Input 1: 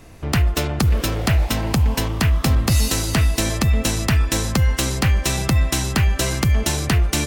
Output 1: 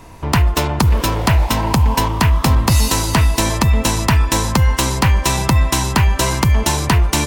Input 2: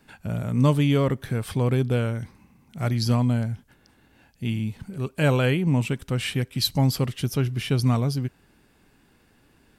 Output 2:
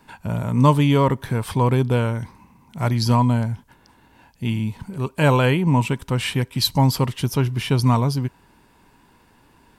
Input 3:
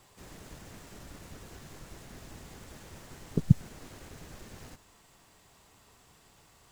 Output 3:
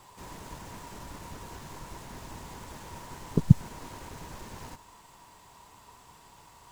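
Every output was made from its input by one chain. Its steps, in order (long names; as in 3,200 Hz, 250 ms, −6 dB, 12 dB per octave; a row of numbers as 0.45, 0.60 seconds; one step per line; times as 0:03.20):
parametric band 960 Hz +14 dB 0.27 octaves
level +3.5 dB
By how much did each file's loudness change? +4.0, +4.0, 0.0 LU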